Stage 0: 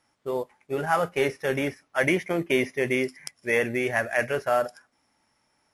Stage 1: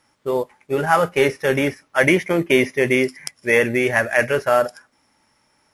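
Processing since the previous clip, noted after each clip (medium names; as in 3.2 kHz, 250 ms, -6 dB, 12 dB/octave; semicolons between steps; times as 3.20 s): band-stop 710 Hz, Q 12; trim +7.5 dB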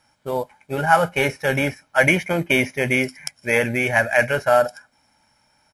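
comb 1.3 ms, depth 55%; trim -1 dB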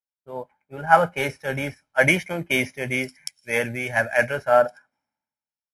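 three bands expanded up and down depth 100%; trim -5 dB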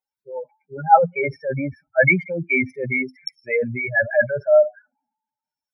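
spectral contrast enhancement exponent 3.7; trim +3.5 dB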